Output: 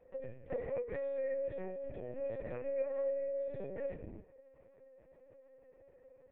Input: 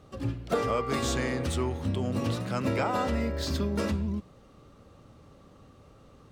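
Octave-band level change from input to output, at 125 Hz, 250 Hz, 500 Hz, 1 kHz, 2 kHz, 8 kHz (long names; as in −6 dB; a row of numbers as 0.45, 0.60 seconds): −22.0 dB, −20.5 dB, −4.0 dB, −22.5 dB, −17.0 dB, below −40 dB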